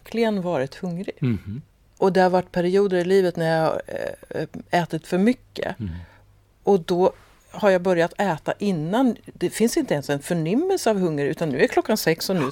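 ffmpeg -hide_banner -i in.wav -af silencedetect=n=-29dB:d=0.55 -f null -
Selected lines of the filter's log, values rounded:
silence_start: 5.99
silence_end: 6.67 | silence_duration: 0.68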